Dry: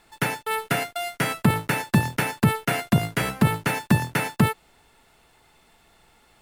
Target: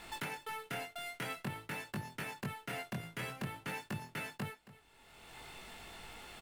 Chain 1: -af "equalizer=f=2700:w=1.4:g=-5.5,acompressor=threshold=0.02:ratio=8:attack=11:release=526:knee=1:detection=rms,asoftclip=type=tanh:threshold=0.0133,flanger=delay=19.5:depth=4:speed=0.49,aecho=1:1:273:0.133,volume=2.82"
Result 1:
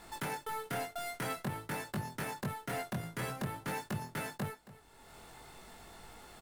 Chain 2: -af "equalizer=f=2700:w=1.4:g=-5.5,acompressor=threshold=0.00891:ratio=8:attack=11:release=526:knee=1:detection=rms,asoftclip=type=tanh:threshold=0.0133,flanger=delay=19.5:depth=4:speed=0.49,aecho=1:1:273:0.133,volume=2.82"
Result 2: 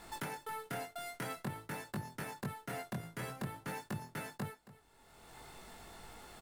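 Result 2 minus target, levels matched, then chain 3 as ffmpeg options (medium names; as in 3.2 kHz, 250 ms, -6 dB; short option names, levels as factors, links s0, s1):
2 kHz band -3.0 dB
-af "equalizer=f=2700:w=1.4:g=4,acompressor=threshold=0.00891:ratio=8:attack=11:release=526:knee=1:detection=rms,asoftclip=type=tanh:threshold=0.0133,flanger=delay=19.5:depth=4:speed=0.49,aecho=1:1:273:0.133,volume=2.82"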